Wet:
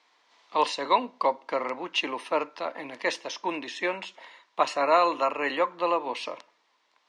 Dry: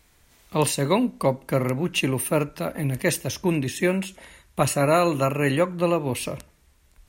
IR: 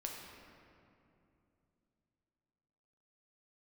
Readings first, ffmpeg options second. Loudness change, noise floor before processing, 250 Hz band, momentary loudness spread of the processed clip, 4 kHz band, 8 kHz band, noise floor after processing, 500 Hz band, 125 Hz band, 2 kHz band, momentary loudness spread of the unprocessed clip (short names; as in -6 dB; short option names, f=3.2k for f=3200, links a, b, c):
-4.0 dB, -60 dBFS, -12.0 dB, 13 LU, -1.5 dB, -15.0 dB, -70 dBFS, -4.5 dB, -30.5 dB, -2.0 dB, 9 LU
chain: -af "highpass=f=370:w=0.5412,highpass=f=370:w=1.3066,equalizer=f=390:t=q:w=4:g=-9,equalizer=f=570:t=q:w=4:g=-4,equalizer=f=1k:t=q:w=4:g=7,equalizer=f=1.5k:t=q:w=4:g=-4,equalizer=f=2.5k:t=q:w=4:g=-3,lowpass=f=5k:w=0.5412,lowpass=f=5k:w=1.3066"